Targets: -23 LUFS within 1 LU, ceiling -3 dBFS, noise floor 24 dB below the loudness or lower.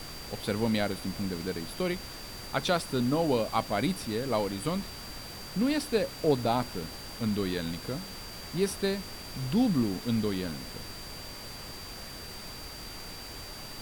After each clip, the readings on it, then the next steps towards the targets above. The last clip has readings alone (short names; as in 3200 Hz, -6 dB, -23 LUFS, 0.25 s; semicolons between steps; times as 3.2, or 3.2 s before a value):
steady tone 4700 Hz; tone level -45 dBFS; noise floor -43 dBFS; noise floor target -56 dBFS; loudness -32.0 LUFS; peak -13.5 dBFS; loudness target -23.0 LUFS
-> notch 4700 Hz, Q 30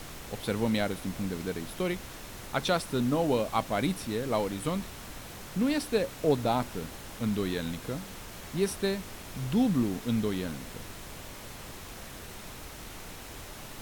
steady tone none; noise floor -44 dBFS; noise floor target -55 dBFS
-> noise print and reduce 11 dB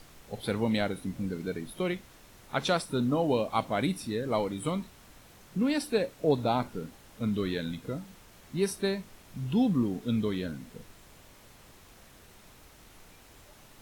noise floor -55 dBFS; loudness -31.0 LUFS; peak -14.0 dBFS; loudness target -23.0 LUFS
-> gain +8 dB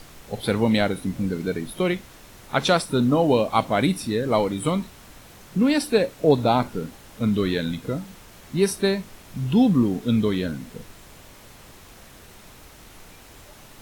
loudness -23.0 LUFS; peak -6.0 dBFS; noise floor -47 dBFS